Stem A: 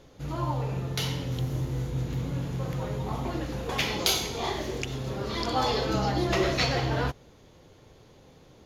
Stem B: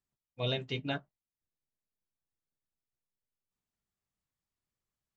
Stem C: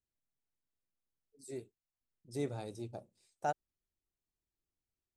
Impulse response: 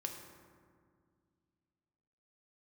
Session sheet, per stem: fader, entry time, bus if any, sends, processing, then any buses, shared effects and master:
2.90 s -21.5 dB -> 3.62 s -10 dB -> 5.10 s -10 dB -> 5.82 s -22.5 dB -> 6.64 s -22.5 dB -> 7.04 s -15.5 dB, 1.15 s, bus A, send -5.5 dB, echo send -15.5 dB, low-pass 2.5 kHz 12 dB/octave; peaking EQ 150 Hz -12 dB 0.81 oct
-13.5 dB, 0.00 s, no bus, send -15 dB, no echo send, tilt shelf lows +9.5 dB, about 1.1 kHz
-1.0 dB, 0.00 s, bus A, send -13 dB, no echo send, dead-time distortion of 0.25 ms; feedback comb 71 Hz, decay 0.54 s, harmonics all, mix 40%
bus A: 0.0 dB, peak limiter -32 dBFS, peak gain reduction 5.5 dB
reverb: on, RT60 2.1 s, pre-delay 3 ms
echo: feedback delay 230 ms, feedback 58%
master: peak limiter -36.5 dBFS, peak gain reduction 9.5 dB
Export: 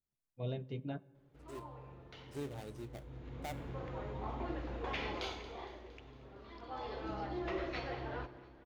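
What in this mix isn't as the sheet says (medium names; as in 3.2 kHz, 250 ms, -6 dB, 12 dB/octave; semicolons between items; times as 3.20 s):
stem C: send off; master: missing peak limiter -36.5 dBFS, peak gain reduction 9.5 dB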